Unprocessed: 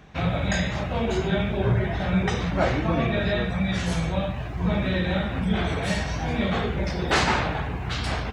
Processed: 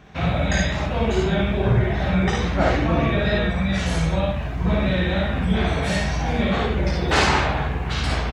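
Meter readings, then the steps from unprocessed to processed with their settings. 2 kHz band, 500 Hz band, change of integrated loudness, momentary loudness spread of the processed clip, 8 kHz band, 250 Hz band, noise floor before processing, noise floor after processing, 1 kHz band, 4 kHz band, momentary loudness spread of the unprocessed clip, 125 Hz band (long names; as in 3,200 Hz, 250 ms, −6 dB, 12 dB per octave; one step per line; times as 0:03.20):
+3.5 dB, +3.5 dB, +3.5 dB, 4 LU, +3.5 dB, +3.0 dB, −31 dBFS, −26 dBFS, +3.5 dB, +3.5 dB, 5 LU, +3.5 dB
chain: ambience of single reflections 54 ms −3.5 dB, 68 ms −5 dB
tape wow and flutter 21 cents
level +1 dB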